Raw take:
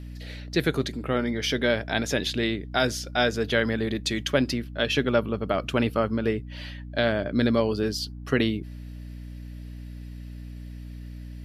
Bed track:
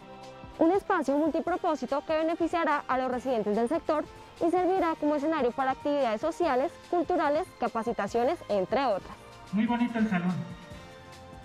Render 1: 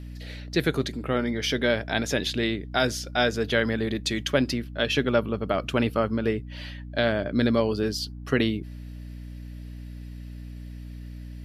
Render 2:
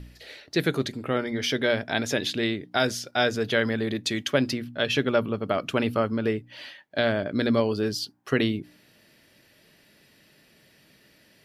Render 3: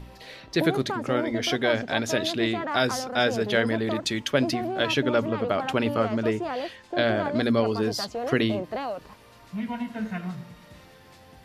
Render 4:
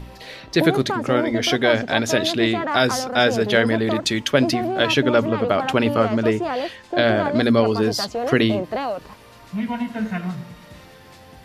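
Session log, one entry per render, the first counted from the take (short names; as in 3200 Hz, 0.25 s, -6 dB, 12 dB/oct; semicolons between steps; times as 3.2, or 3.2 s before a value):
nothing audible
de-hum 60 Hz, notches 5
add bed track -4.5 dB
gain +6 dB; limiter -3 dBFS, peak gain reduction 1.5 dB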